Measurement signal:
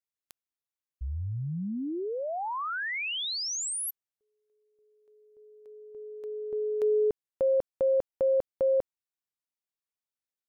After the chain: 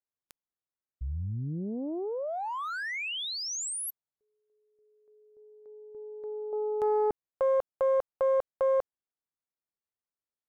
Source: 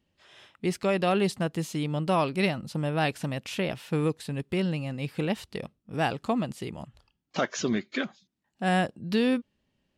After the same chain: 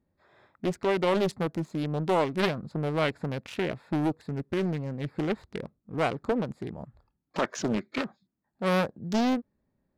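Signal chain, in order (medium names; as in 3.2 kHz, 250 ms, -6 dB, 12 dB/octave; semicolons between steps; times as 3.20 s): local Wiener filter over 15 samples; loudspeaker Doppler distortion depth 0.67 ms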